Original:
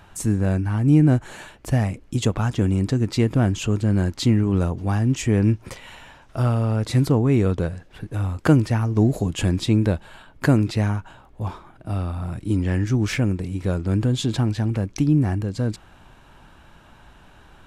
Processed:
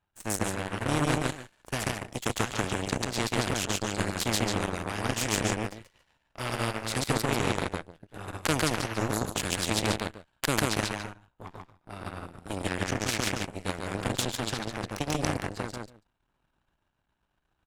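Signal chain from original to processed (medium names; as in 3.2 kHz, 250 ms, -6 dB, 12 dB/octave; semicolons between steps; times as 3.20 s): loudspeakers at several distances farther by 48 m -1 dB, 97 m -10 dB; Chebyshev shaper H 6 -31 dB, 7 -17 dB, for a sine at -2 dBFS; spectrum-flattening compressor 2:1; trim -2.5 dB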